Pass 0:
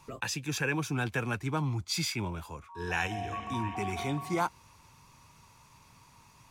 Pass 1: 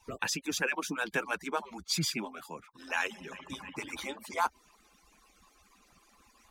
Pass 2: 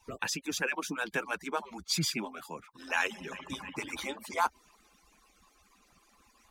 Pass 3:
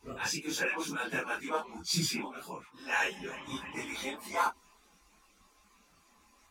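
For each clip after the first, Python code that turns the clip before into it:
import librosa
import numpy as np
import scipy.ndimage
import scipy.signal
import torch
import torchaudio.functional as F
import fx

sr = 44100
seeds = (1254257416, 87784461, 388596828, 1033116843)

y1 = fx.hpss_only(x, sr, part='percussive')
y1 = y1 * 10.0 ** (2.0 / 20.0)
y2 = fx.rider(y1, sr, range_db=4, speed_s=2.0)
y3 = fx.phase_scramble(y2, sr, seeds[0], window_ms=100)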